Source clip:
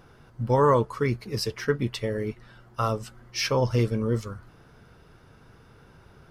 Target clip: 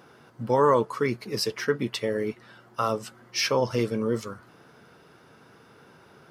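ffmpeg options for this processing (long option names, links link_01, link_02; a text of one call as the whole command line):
ffmpeg -i in.wav -filter_complex "[0:a]asplit=2[link_01][link_02];[link_02]alimiter=limit=-20dB:level=0:latency=1:release=69,volume=-2.5dB[link_03];[link_01][link_03]amix=inputs=2:normalize=0,highpass=200,volume=-2dB" out.wav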